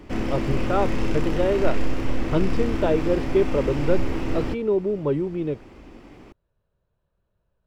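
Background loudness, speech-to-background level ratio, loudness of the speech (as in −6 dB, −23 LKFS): −28.5 LKFS, 3.0 dB, −25.5 LKFS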